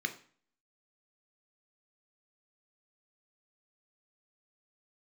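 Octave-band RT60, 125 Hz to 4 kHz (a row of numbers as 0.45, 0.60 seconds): 0.50, 0.55, 0.45, 0.45, 0.45, 0.40 seconds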